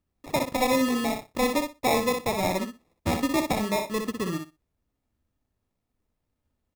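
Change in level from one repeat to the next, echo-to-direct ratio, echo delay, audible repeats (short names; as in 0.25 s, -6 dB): -16.0 dB, -6.0 dB, 61 ms, 2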